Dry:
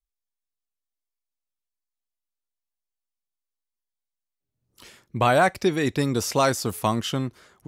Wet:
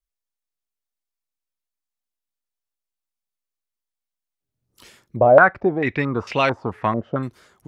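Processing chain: 5.16–7.23 s: step-sequenced low-pass 4.5 Hz 610–2700 Hz

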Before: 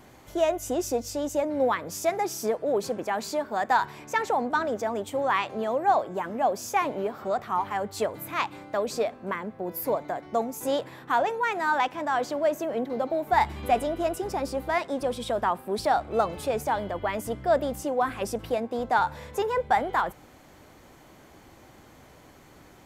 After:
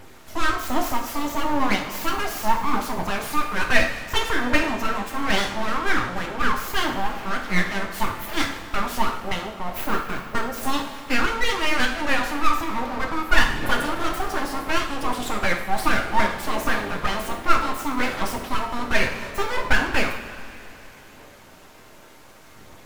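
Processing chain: phaser 0.66 Hz, delay 3.3 ms, feedback 41%; full-wave rectifier; two-slope reverb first 0.55 s, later 3.4 s, from -15 dB, DRR 1 dB; trim +4.5 dB

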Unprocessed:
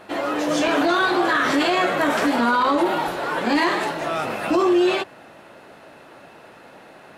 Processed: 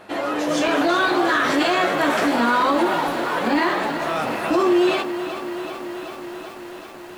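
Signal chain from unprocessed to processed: 3.47–4.00 s: treble shelf 4.9 kHz -> 7.6 kHz -12 dB; bit-crushed delay 380 ms, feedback 80%, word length 7-bit, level -11 dB

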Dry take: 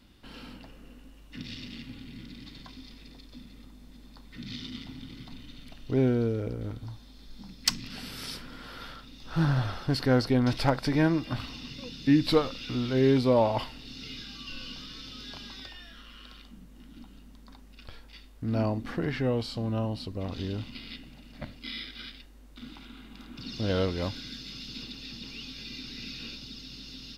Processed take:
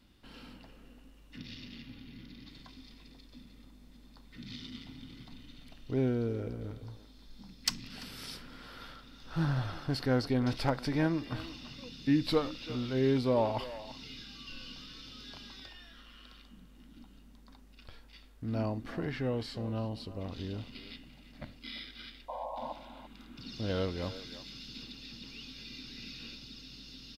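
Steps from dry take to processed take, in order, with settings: 1.38–2.50 s: peaking EQ 8.1 kHz -13.5 dB 0.25 oct; 22.28–22.73 s: painted sound noise 500–1100 Hz -34 dBFS; speakerphone echo 340 ms, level -13 dB; trim -5.5 dB

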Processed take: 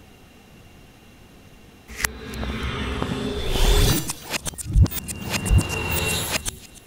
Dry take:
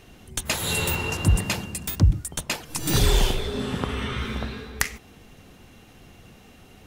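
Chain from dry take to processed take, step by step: reverse the whole clip; feedback echo behind a high-pass 292 ms, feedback 34%, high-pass 3.2 kHz, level -18 dB; trim +1.5 dB

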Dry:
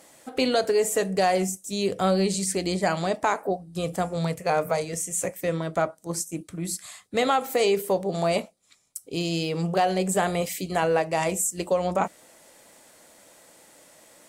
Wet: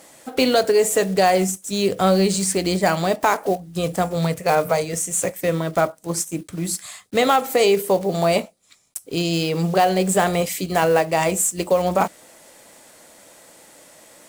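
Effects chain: block-companded coder 5-bit; trim +5.5 dB

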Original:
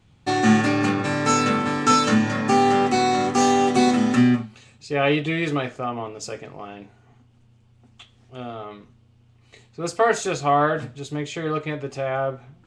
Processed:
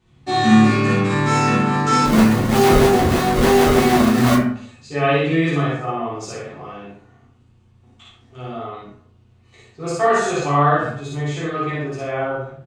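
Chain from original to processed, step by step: loudspeakers at several distances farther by 19 m 0 dB, 40 m -9 dB; 2.05–4.35 s: decimation with a swept rate 30×, swing 160% 3.2 Hz; plate-style reverb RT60 0.55 s, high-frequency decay 0.45×, DRR -5.5 dB; trim -6.5 dB

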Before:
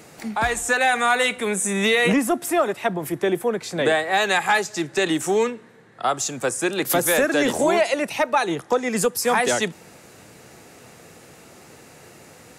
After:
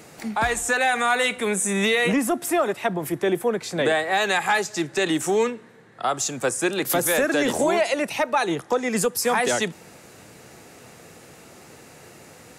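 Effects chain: peak limiter -12.5 dBFS, peak gain reduction 4.5 dB

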